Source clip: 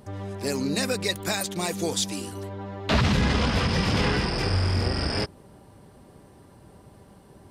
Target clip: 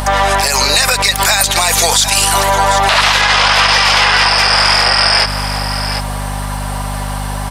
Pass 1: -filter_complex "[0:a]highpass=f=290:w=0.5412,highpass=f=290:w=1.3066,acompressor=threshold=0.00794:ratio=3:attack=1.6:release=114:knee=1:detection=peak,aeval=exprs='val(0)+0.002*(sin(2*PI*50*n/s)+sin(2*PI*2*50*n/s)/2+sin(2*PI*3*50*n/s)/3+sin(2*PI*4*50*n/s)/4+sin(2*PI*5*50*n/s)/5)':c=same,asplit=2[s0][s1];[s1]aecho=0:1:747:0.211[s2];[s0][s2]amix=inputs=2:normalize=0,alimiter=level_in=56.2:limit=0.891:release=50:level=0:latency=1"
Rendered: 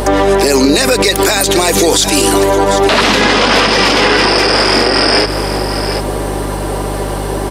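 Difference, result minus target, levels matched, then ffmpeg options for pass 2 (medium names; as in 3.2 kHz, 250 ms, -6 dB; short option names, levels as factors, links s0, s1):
250 Hz band +13.5 dB
-filter_complex "[0:a]highpass=f=740:w=0.5412,highpass=f=740:w=1.3066,acompressor=threshold=0.00794:ratio=3:attack=1.6:release=114:knee=1:detection=peak,aeval=exprs='val(0)+0.002*(sin(2*PI*50*n/s)+sin(2*PI*2*50*n/s)/2+sin(2*PI*3*50*n/s)/3+sin(2*PI*4*50*n/s)/4+sin(2*PI*5*50*n/s)/5)':c=same,asplit=2[s0][s1];[s1]aecho=0:1:747:0.211[s2];[s0][s2]amix=inputs=2:normalize=0,alimiter=level_in=56.2:limit=0.891:release=50:level=0:latency=1"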